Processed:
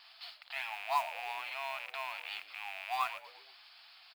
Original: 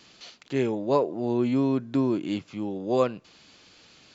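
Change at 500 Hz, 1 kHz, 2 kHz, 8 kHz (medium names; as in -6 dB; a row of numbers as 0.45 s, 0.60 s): -21.5 dB, -2.0 dB, +4.5 dB, no reading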